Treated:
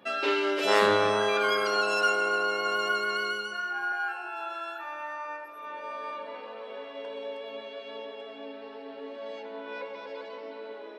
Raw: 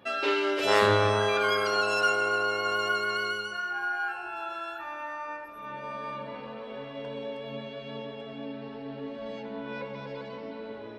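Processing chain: HPF 150 Hz 24 dB/oct, from 3.92 s 330 Hz

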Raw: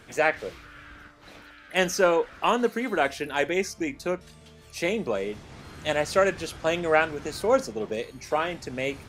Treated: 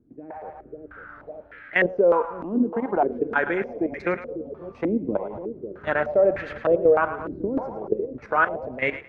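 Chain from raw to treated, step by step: level quantiser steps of 14 dB; split-band echo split 550 Hz, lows 0.547 s, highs 0.109 s, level -11.5 dB; AGC gain up to 13 dB; stepped low-pass 3.3 Hz 290–1900 Hz; gain -8 dB

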